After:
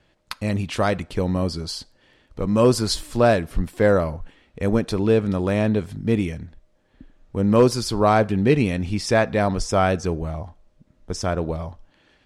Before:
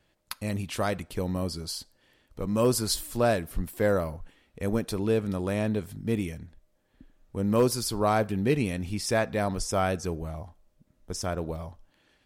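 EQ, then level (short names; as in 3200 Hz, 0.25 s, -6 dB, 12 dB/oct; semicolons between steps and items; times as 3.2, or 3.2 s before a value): air absorption 65 m; +7.5 dB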